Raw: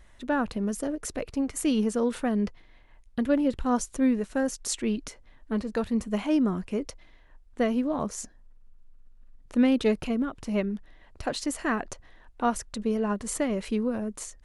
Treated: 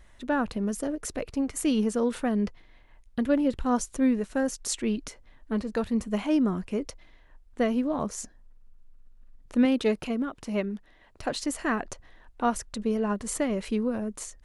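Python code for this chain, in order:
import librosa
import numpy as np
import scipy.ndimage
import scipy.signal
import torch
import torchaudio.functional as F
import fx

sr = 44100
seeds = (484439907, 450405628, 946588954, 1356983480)

y = fx.low_shelf(x, sr, hz=120.0, db=-9.0, at=(9.65, 11.22))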